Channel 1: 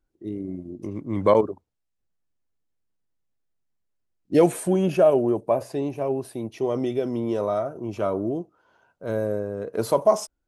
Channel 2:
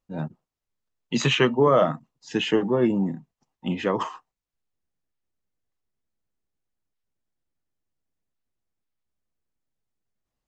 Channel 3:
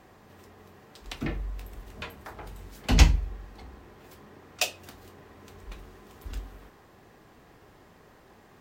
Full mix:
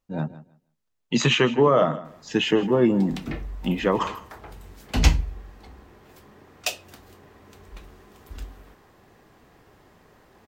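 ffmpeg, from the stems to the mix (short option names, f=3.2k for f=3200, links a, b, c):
-filter_complex "[1:a]alimiter=limit=-11.5dB:level=0:latency=1:release=251,volume=2.5dB,asplit=2[a][b];[b]volume=-16.5dB[c];[2:a]adelay=2050,volume=0dB[d];[c]aecho=0:1:159|318|477:1|0.17|0.0289[e];[a][d][e]amix=inputs=3:normalize=0"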